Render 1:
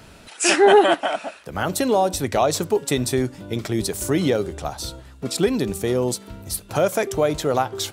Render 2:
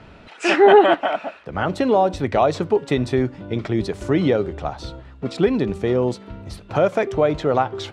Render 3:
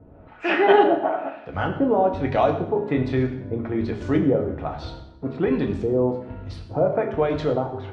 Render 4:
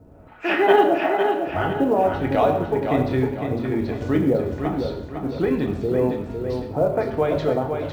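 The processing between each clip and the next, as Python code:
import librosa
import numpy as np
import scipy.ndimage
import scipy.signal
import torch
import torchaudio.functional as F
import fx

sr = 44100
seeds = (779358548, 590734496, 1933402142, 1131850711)

y1 = scipy.signal.sosfilt(scipy.signal.butter(2, 2700.0, 'lowpass', fs=sr, output='sos'), x)
y1 = fx.notch(y1, sr, hz=1600.0, q=29.0)
y1 = y1 * librosa.db_to_amplitude(2.0)
y2 = fx.filter_lfo_lowpass(y1, sr, shape='saw_up', hz=1.2, low_hz=440.0, high_hz=7000.0, q=0.99)
y2 = fx.rev_fdn(y2, sr, rt60_s=0.8, lf_ratio=1.35, hf_ratio=0.95, size_ms=64.0, drr_db=2.5)
y2 = y2 * librosa.db_to_amplitude(-4.5)
y3 = fx.echo_feedback(y2, sr, ms=505, feedback_pct=41, wet_db=-6)
y3 = fx.quant_companded(y3, sr, bits=8)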